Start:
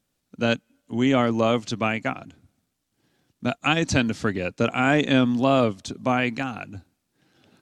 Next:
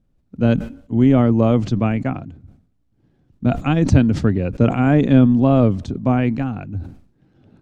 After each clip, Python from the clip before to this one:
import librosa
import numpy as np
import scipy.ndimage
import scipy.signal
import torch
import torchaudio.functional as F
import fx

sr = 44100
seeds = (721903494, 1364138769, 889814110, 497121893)

y = fx.tilt_eq(x, sr, slope=-4.5)
y = fx.sustainer(y, sr, db_per_s=110.0)
y = F.gain(torch.from_numpy(y), -1.5).numpy()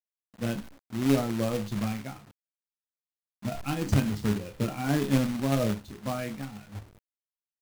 y = fx.bin_expand(x, sr, power=1.5)
y = fx.resonator_bank(y, sr, root=37, chord='fifth', decay_s=0.25)
y = fx.quant_companded(y, sr, bits=4)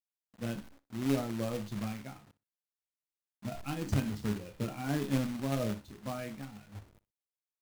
y = fx.echo_feedback(x, sr, ms=61, feedback_pct=18, wet_db=-18.5)
y = F.gain(torch.from_numpy(y), -6.5).numpy()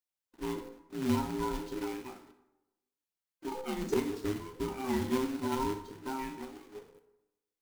y = fx.band_invert(x, sr, width_hz=500)
y = fx.rev_plate(y, sr, seeds[0], rt60_s=0.97, hf_ratio=0.65, predelay_ms=0, drr_db=9.0)